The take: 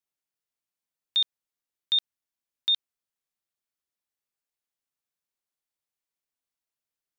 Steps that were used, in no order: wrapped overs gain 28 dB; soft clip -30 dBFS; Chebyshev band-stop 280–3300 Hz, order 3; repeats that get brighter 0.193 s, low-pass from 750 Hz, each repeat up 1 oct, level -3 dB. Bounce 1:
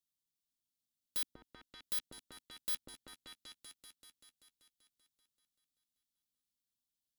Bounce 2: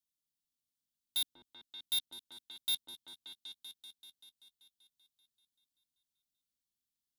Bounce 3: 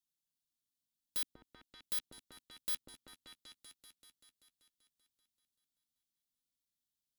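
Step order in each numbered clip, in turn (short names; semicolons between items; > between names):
Chebyshev band-stop > wrapped overs > repeats that get brighter > soft clip; soft clip > Chebyshev band-stop > wrapped overs > repeats that get brighter; Chebyshev band-stop > wrapped overs > soft clip > repeats that get brighter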